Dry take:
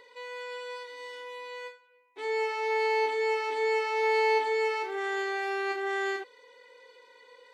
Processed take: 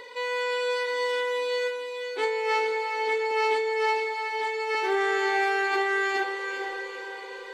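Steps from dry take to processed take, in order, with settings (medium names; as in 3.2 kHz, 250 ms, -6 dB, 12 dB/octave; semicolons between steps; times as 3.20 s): 3.31–4.75 s: high-pass 310 Hz; compressor with a negative ratio -34 dBFS, ratio -1; on a send: echo that smears into a reverb 476 ms, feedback 50%, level -6 dB; on the sum: trim +7 dB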